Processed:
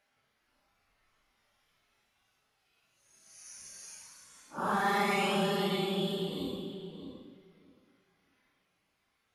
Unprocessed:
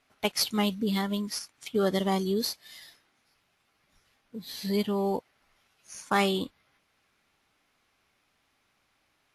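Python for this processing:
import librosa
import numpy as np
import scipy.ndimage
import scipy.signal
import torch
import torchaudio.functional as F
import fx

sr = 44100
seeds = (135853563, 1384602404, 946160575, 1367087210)

y = fx.paulstretch(x, sr, seeds[0], factor=5.9, window_s=0.05, from_s=5.33)
y = fx.echo_filtered(y, sr, ms=621, feedback_pct=16, hz=2200.0, wet_db=-7.5)
y = y * librosa.db_to_amplitude(-6.0)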